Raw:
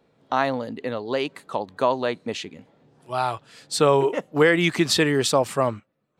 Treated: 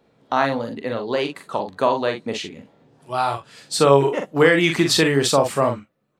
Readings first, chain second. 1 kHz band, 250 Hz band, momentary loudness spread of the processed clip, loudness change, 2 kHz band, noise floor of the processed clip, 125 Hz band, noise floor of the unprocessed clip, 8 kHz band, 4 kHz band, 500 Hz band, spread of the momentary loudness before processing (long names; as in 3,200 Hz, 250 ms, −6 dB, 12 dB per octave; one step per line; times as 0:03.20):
+3.0 dB, +3.0 dB, 13 LU, +3.0 dB, +3.0 dB, −68 dBFS, +3.5 dB, −73 dBFS, +3.0 dB, +3.0 dB, +3.0 dB, 13 LU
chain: ambience of single reflections 43 ms −6 dB, 57 ms −15.5 dB
level +2 dB